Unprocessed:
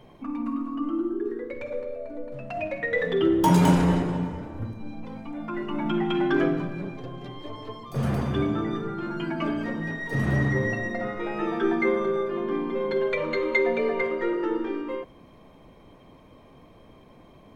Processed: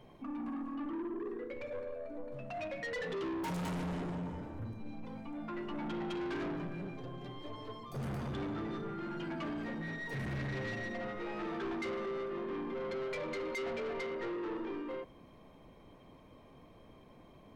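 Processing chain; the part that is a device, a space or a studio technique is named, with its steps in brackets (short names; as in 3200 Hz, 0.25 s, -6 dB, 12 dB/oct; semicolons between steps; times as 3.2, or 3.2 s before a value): saturation between pre-emphasis and de-emphasis (high shelf 9500 Hz +12 dB; soft clip -29.5 dBFS, distortion -6 dB; high shelf 9500 Hz -12 dB); gain -6 dB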